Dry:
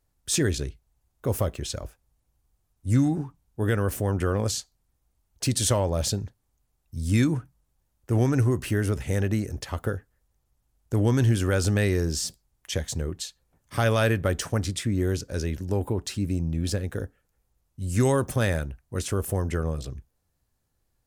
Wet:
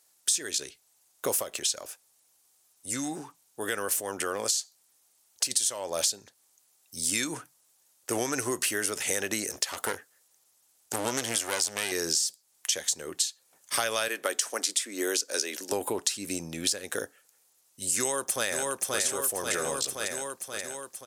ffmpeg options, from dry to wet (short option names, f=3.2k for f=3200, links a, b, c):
-filter_complex "[0:a]asplit=3[a][b][c];[a]afade=t=out:st=1.42:d=0.02[d];[b]acompressor=threshold=-38dB:ratio=1.5:attack=3.2:release=140:knee=1:detection=peak,afade=t=in:st=1.42:d=0.02,afade=t=out:st=5.5:d=0.02[e];[c]afade=t=in:st=5.5:d=0.02[f];[d][e][f]amix=inputs=3:normalize=0,asettb=1/sr,asplit=3[g][h][i];[g]atrim=end=9.494[j];[h]atrim=start=9.49:end=11.92,asetpts=PTS-STARTPTS,afade=t=in:d=0.004:c=qsin,afade=t=out:st=2.426:d=0.004:c=qsin,aeval=exprs='clip(val(0),-1,0.0355)':c=same[k];[i]atrim=start=11.916[l];[j][k]acrossfade=d=0.004:c1=hsin:c2=qsin[m];[m][l]acrossfade=d=0.004:c1=qsin:c2=hsin,asettb=1/sr,asplit=3[n][o][p];[n]atrim=end=14.084[q];[o]atrim=start=14.08:end=15.72,asetpts=PTS-STARTPTS,afade=t=in:d=0.004:c=qsin,afade=t=out:st=1.636:d=0.004:c=qsin,highpass=f=250:w=0.5412,highpass=f=250:w=1.3066[r];[p]atrim=start=15.716[s];[q][r]acrossfade=d=0.004:c1=hsin:c2=qsin[t];[t][s]acrossfade=d=0.004:c1=qsin:c2=hsin,asplit=2[u][v];[v]afade=t=in:st=17.98:d=0.01,afade=t=out:st=19.01:d=0.01,aecho=0:1:530|1060|1590|2120|2650|3180|3710|4240|4770:0.473151|0.307548|0.199906|0.129939|0.0844605|0.0548993|0.0356845|0.023195|0.0150767[w];[u][w]amix=inputs=2:normalize=0,highpass=440,equalizer=f=8.3k:w=0.32:g=14.5,acompressor=threshold=-29dB:ratio=10,volume=4.5dB"